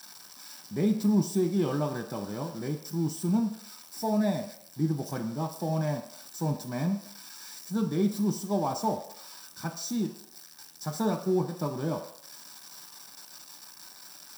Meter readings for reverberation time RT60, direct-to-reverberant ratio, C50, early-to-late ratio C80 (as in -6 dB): not exponential, 2.5 dB, 9.0 dB, 11.5 dB